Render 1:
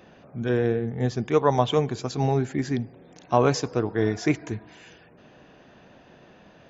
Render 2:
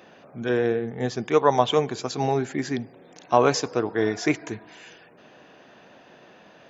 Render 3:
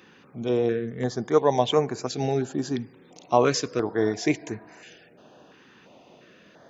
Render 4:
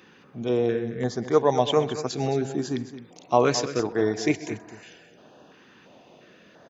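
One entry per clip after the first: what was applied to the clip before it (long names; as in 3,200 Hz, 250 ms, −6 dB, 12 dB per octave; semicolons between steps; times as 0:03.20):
high-pass filter 360 Hz 6 dB per octave; level +3.5 dB
notch on a step sequencer 2.9 Hz 650–3,300 Hz
multi-tap delay 129/217 ms −20/−12.5 dB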